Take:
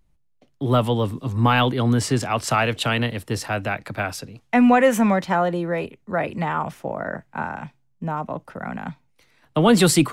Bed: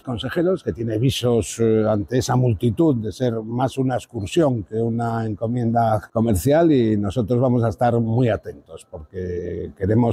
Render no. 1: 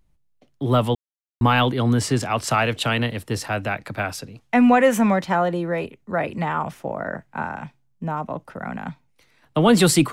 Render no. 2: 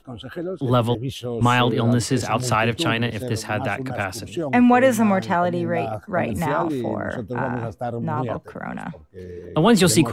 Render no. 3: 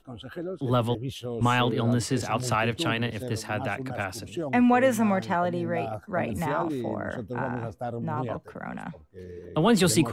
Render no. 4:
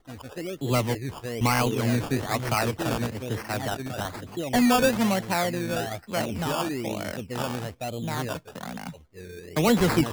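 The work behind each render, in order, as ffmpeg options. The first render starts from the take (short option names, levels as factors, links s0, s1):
-filter_complex "[0:a]asplit=3[s0][s1][s2];[s0]atrim=end=0.95,asetpts=PTS-STARTPTS,afade=t=out:st=0.946:d=0.004:c=hsin[s3];[s1]atrim=start=0.95:end=1.41,asetpts=PTS-STARTPTS,volume=0[s4];[s2]atrim=start=1.41,asetpts=PTS-STARTPTS,afade=t=in:d=0.004:c=hsin[s5];[s3][s4][s5]concat=n=3:v=0:a=1"
-filter_complex "[1:a]volume=0.335[s0];[0:a][s0]amix=inputs=2:normalize=0"
-af "volume=0.531"
-af "acrusher=samples=17:mix=1:aa=0.000001:lfo=1:lforange=10.2:lforate=1.1"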